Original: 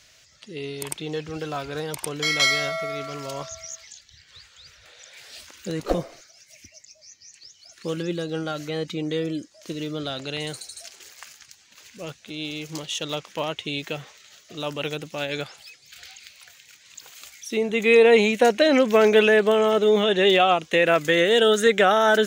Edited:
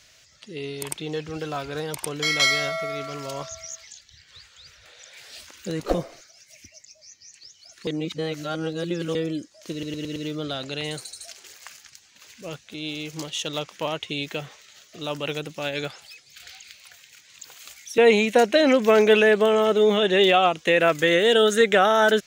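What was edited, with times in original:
0:07.87–0:09.15: reverse
0:09.72: stutter 0.11 s, 5 plays
0:17.54–0:18.04: remove

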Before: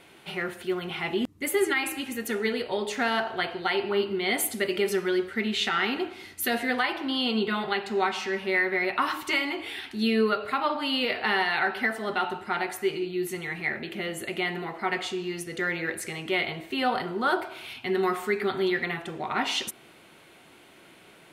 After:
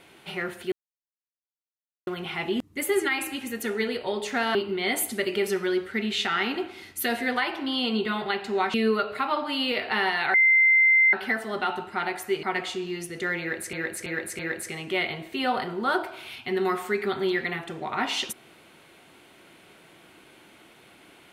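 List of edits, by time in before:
0:00.72: splice in silence 1.35 s
0:03.20–0:03.97: remove
0:08.16–0:10.07: remove
0:11.67: insert tone 2,080 Hz −15 dBFS 0.79 s
0:12.97–0:14.80: remove
0:15.77–0:16.10: repeat, 4 plays

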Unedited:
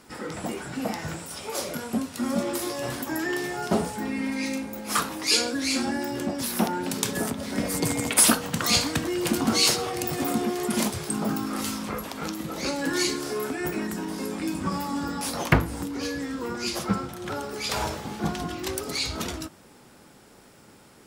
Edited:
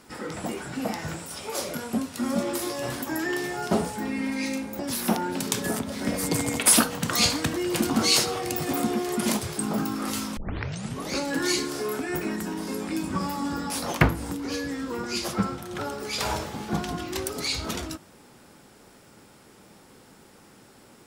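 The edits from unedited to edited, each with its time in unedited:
0:04.79–0:06.30: remove
0:11.88: tape start 0.73 s

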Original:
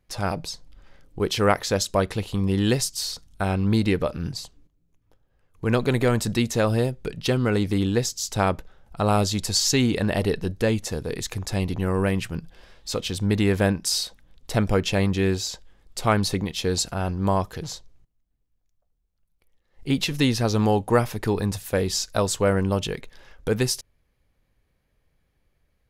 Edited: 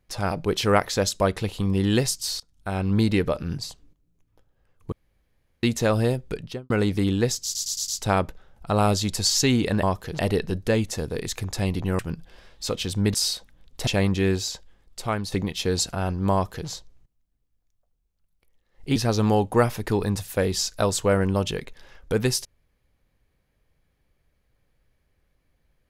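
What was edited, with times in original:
0:00.45–0:01.19: remove
0:03.14–0:03.66: fade in, from −23 dB
0:05.66–0:06.37: fill with room tone
0:07.07–0:07.44: fade out and dull
0:08.18: stutter 0.11 s, 5 plays
0:11.93–0:12.24: remove
0:13.39–0:13.84: remove
0:14.57–0:14.86: remove
0:15.44–0:16.31: fade out linear, to −9 dB
0:17.32–0:17.68: duplicate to 0:10.13
0:19.95–0:20.32: remove

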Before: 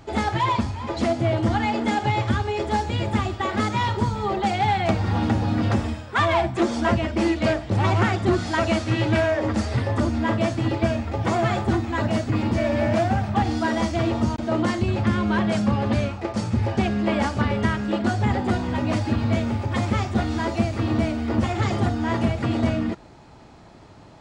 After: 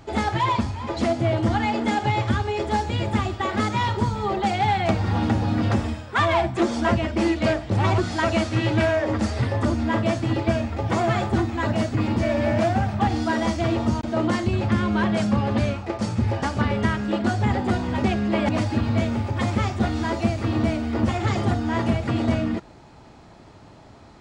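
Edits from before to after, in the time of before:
0:07.98–0:08.33: remove
0:16.78–0:17.23: move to 0:18.84

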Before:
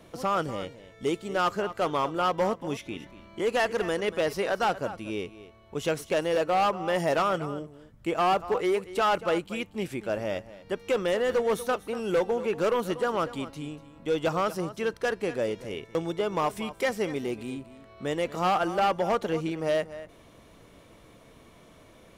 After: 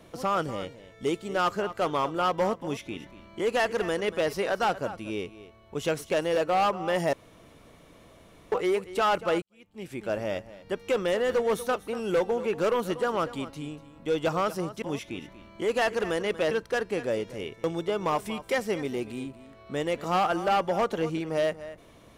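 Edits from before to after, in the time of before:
0:02.60–0:04.29: duplicate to 0:14.82
0:07.13–0:08.52: fill with room tone
0:09.42–0:10.05: fade in quadratic

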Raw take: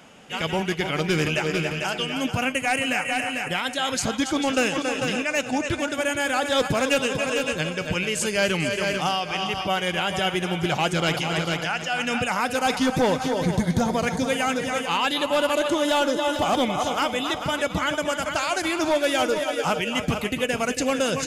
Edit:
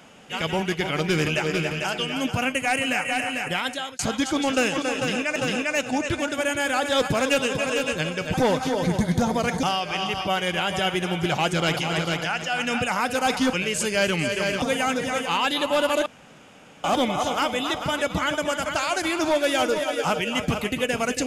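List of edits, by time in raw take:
0:03.67–0:03.99: fade out
0:04.96–0:05.36: repeat, 2 plays
0:07.94–0:09.03: swap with 0:12.93–0:14.22
0:15.66–0:16.44: fill with room tone

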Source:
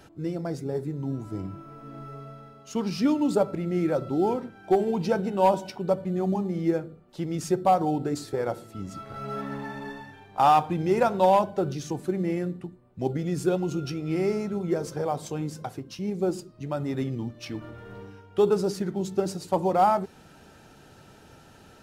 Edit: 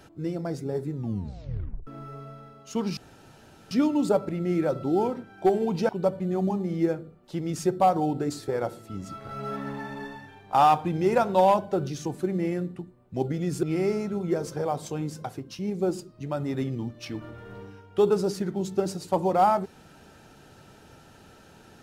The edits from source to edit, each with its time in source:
0:00.93: tape stop 0.94 s
0:02.97: splice in room tone 0.74 s
0:05.15–0:05.74: remove
0:13.48–0:14.03: remove

